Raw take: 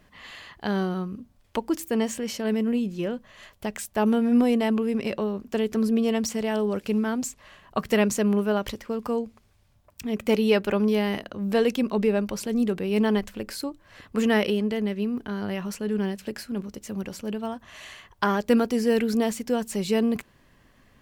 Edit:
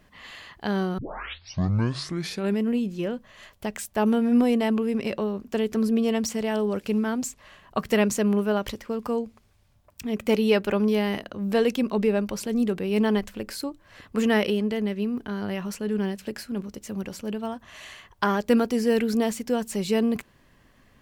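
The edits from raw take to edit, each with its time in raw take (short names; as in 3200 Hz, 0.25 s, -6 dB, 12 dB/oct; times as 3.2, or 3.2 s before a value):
0.98 tape start 1.64 s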